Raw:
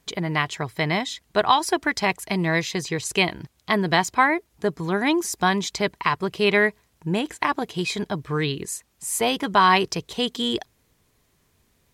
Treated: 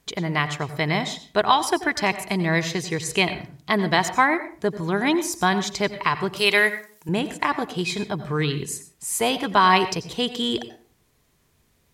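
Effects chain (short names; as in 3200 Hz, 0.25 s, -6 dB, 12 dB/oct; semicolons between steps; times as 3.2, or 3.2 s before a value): 6.36–7.09 RIAA curve recording; on a send: reverb RT60 0.40 s, pre-delay 84 ms, DRR 12 dB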